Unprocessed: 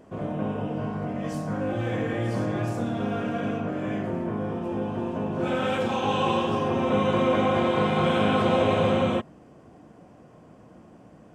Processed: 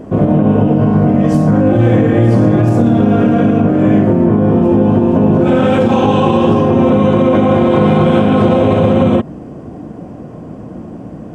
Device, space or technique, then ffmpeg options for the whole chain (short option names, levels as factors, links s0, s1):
mastering chain: -af "equalizer=f=270:t=o:w=0.77:g=2,acompressor=threshold=0.0501:ratio=2.5,tiltshelf=f=760:g=6,asoftclip=type=hard:threshold=0.2,alimiter=level_in=7.5:limit=0.891:release=50:level=0:latency=1,volume=0.891"